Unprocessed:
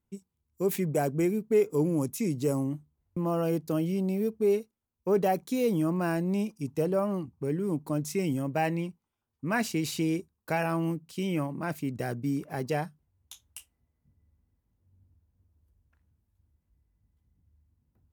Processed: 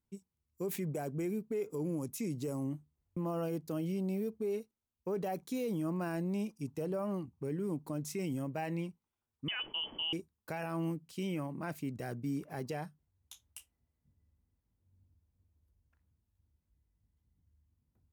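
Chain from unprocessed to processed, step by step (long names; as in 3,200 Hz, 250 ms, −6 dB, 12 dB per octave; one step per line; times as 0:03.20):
0:09.48–0:10.13: voice inversion scrambler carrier 3,200 Hz
brickwall limiter −23 dBFS, peak gain reduction 8.5 dB
level −5.5 dB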